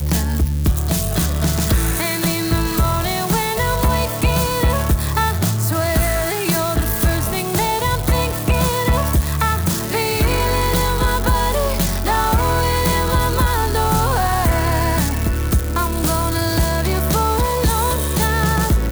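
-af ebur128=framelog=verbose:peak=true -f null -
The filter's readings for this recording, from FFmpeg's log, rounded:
Integrated loudness:
  I:         -18.0 LUFS
  Threshold: -28.0 LUFS
Loudness range:
  LRA:         0.9 LU
  Threshold: -38.0 LUFS
  LRA low:   -18.3 LUFS
  LRA high:  -17.4 LUFS
True peak:
  Peak:       -5.4 dBFS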